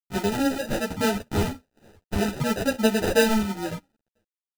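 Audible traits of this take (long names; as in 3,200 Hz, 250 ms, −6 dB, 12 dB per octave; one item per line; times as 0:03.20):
aliases and images of a low sample rate 1,100 Hz, jitter 0%
sample-and-hold tremolo
a quantiser's noise floor 12 bits, dither none
a shimmering, thickened sound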